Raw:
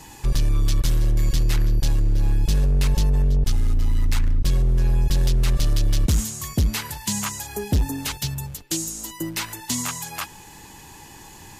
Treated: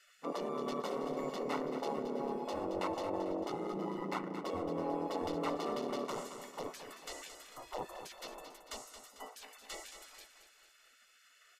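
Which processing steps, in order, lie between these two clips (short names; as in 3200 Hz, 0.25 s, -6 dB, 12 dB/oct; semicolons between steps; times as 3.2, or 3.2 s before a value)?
polynomial smoothing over 65 samples; spectral gate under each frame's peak -30 dB weak; feedback echo 0.223 s, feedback 52%, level -9.5 dB; gain +5 dB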